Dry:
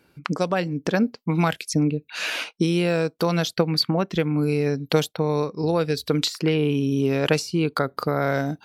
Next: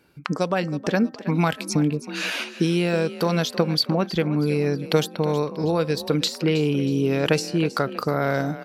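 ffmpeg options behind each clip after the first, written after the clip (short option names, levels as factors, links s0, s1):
-filter_complex "[0:a]bandreject=f=260.8:t=h:w=4,bandreject=f=521.6:t=h:w=4,bandreject=f=782.4:t=h:w=4,bandreject=f=1043.2:t=h:w=4,bandreject=f=1304:t=h:w=4,bandreject=f=1564.8:t=h:w=4,bandreject=f=1825.6:t=h:w=4,asplit=5[s0][s1][s2][s3][s4];[s1]adelay=319,afreqshift=35,volume=0.188[s5];[s2]adelay=638,afreqshift=70,volume=0.0733[s6];[s3]adelay=957,afreqshift=105,volume=0.0285[s7];[s4]adelay=1276,afreqshift=140,volume=0.0112[s8];[s0][s5][s6][s7][s8]amix=inputs=5:normalize=0"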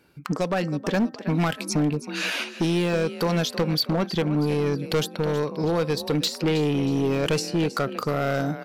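-af "asoftclip=type=hard:threshold=0.126"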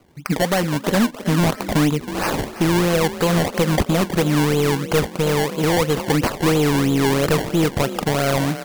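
-af "acrusher=samples=24:mix=1:aa=0.000001:lfo=1:lforange=24:lforate=3,volume=1.88"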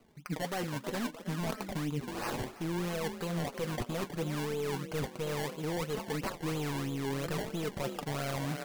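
-af "flanger=delay=4.5:depth=3.9:regen=37:speed=0.66:shape=sinusoidal,areverse,acompressor=threshold=0.0398:ratio=6,areverse,volume=0.596"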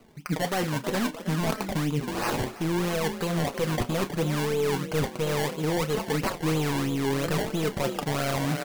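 -filter_complex "[0:a]asplit=2[s0][s1];[s1]adelay=32,volume=0.2[s2];[s0][s2]amix=inputs=2:normalize=0,volume=2.51"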